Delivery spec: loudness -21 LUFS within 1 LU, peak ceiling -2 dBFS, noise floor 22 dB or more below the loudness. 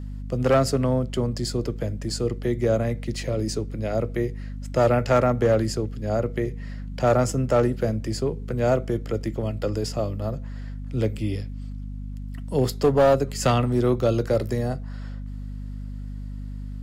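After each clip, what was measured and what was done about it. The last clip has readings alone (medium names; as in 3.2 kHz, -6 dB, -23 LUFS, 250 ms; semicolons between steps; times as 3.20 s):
clipped samples 0.6%; clipping level -12.0 dBFS; hum 50 Hz; highest harmonic 250 Hz; hum level -31 dBFS; loudness -24.5 LUFS; peak level -12.0 dBFS; loudness target -21.0 LUFS
-> clip repair -12 dBFS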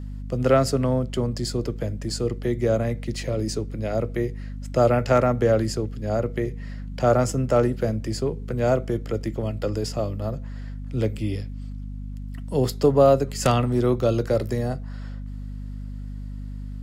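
clipped samples 0.0%; hum 50 Hz; highest harmonic 250 Hz; hum level -31 dBFS
-> de-hum 50 Hz, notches 5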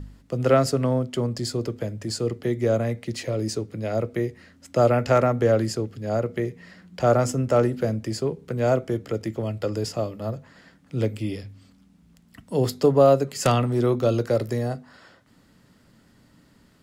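hum not found; loudness -24.0 LUFS; peak level -3.5 dBFS; loudness target -21.0 LUFS
-> trim +3 dB; peak limiter -2 dBFS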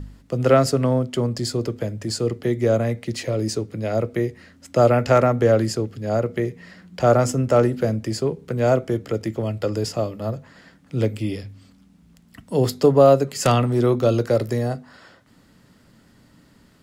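loudness -21.0 LUFS; peak level -2.0 dBFS; noise floor -55 dBFS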